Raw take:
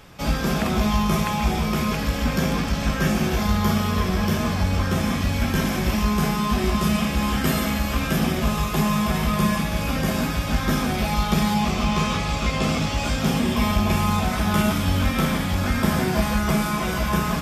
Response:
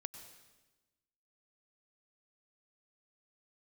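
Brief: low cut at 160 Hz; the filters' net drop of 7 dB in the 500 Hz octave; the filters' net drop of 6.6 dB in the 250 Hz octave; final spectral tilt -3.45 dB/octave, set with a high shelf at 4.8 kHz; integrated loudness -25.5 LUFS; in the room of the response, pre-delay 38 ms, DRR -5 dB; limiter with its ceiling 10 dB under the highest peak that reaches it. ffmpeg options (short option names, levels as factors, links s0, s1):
-filter_complex "[0:a]highpass=160,equalizer=f=250:t=o:g=-5.5,equalizer=f=500:t=o:g=-8,highshelf=f=4800:g=6.5,alimiter=limit=0.112:level=0:latency=1,asplit=2[s0][s1];[1:a]atrim=start_sample=2205,adelay=38[s2];[s1][s2]afir=irnorm=-1:irlink=0,volume=2.66[s3];[s0][s3]amix=inputs=2:normalize=0,volume=0.596"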